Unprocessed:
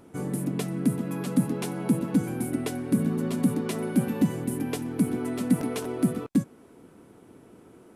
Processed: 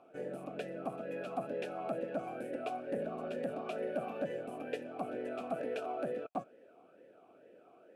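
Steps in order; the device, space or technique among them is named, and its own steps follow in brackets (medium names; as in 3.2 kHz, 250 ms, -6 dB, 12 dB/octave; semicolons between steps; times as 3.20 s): talk box (valve stage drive 23 dB, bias 0.55; talking filter a-e 2.2 Hz); trim +8.5 dB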